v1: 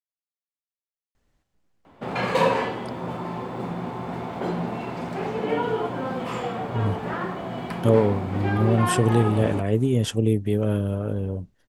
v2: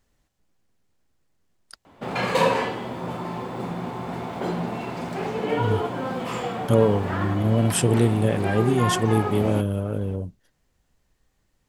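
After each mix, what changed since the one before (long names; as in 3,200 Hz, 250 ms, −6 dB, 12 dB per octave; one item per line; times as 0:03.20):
speech: entry −1.15 s
master: add high-shelf EQ 4,300 Hz +6.5 dB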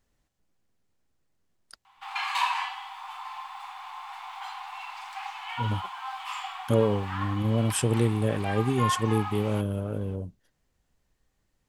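speech −4.5 dB
background: add Chebyshev high-pass with heavy ripple 760 Hz, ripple 6 dB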